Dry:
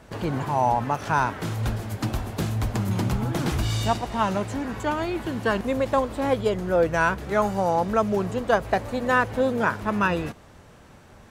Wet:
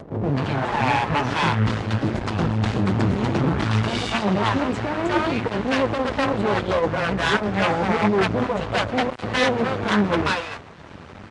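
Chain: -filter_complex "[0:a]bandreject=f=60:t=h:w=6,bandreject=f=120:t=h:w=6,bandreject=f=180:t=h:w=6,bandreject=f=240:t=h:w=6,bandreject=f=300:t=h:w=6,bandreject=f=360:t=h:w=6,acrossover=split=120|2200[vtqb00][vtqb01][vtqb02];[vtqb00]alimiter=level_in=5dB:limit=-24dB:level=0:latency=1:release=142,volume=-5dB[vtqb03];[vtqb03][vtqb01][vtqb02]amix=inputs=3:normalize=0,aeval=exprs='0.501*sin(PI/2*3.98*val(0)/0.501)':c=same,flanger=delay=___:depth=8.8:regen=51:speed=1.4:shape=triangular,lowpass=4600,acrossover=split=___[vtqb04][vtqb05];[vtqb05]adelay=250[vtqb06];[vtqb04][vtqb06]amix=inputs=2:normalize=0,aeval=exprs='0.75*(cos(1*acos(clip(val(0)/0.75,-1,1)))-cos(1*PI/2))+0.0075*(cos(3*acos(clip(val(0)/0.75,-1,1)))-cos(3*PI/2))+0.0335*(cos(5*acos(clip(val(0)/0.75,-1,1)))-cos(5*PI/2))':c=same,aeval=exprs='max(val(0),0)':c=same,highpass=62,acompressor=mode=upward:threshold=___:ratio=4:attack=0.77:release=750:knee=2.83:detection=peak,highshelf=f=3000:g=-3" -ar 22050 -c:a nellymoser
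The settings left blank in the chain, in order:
4.5, 650, -30dB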